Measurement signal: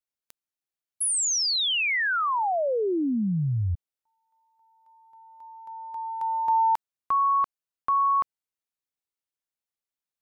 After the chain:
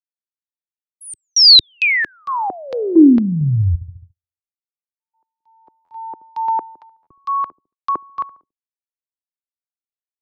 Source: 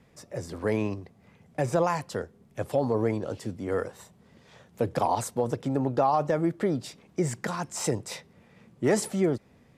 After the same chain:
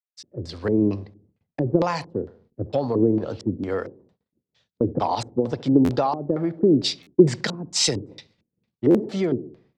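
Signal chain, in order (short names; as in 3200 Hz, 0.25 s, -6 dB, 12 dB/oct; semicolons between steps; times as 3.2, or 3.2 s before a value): on a send: darkening echo 70 ms, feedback 63%, low-pass 1100 Hz, level -16.5 dB; on the sum: gate -54 dBFS, range -34 dB; compressor 5:1, threshold -25 dBFS; LFO low-pass square 2.2 Hz 340–4400 Hz; stuck buffer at 5.84/7.02/8.9, samples 512, times 3; three-band expander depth 100%; gain +6 dB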